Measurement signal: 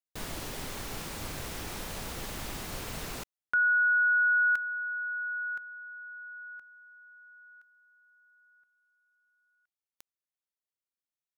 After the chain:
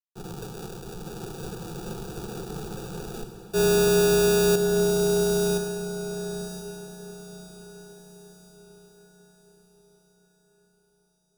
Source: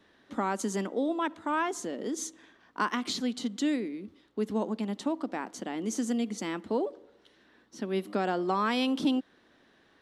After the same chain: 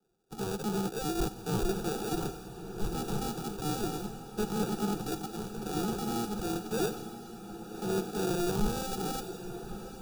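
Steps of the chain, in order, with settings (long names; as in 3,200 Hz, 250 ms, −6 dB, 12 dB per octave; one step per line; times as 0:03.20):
each half-wave held at its own peak
high-pass filter 150 Hz 6 dB per octave
in parallel at 0 dB: downward compressor, threshold −31 dBFS
on the sum: brickwall limiter −19.5 dBFS
decimation without filtering 42×
phaser with its sweep stopped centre 400 Hz, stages 8
on a send: feedback delay with all-pass diffusion 1,109 ms, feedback 61%, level −6.5 dB
on the sum: multiband upward and downward expander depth 70%
level −1.5 dB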